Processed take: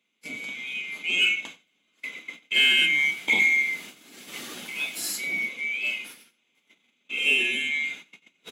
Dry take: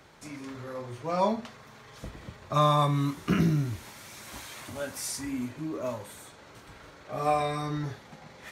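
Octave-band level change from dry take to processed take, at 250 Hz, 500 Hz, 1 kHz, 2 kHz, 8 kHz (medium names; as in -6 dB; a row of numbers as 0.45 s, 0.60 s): -12.0 dB, -12.0 dB, -18.0 dB, +20.5 dB, +4.0 dB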